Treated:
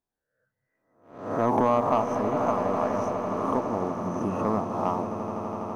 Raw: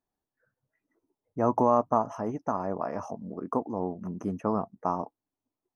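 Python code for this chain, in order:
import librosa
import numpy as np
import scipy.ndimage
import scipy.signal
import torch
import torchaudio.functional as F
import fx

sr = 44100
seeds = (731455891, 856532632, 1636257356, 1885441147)

y = fx.spec_swells(x, sr, rise_s=0.72)
y = fx.leveller(y, sr, passes=1)
y = fx.echo_swell(y, sr, ms=83, loudest=8, wet_db=-14.0)
y = y * 10.0 ** (-3.0 / 20.0)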